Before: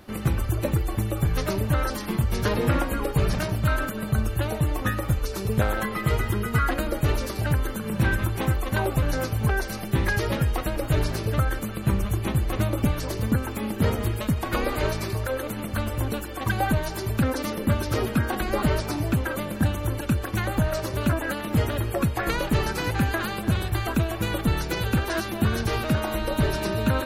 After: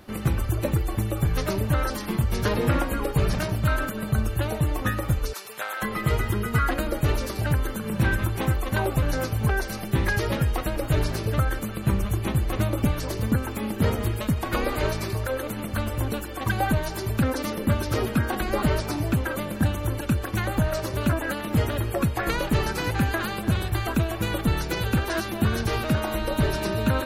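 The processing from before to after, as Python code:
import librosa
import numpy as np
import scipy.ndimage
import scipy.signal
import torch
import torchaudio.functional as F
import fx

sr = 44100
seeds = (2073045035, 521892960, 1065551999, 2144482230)

y = fx.highpass(x, sr, hz=1000.0, slope=12, at=(5.33, 5.82))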